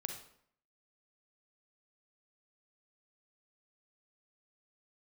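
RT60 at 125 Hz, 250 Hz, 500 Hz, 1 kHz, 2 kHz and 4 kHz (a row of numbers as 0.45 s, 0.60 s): 0.65 s, 0.70 s, 0.65 s, 0.65 s, 0.60 s, 0.50 s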